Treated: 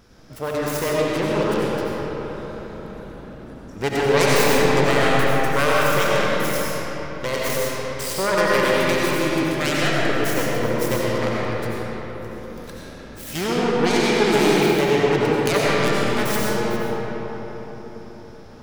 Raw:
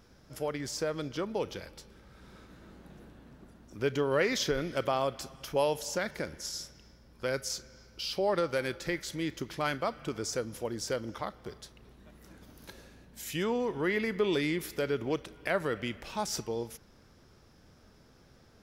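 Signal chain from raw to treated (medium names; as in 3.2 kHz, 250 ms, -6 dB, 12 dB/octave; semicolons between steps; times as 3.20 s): self-modulated delay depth 0.69 ms; algorithmic reverb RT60 4.7 s, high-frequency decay 0.5×, pre-delay 50 ms, DRR -6.5 dB; trim +6.5 dB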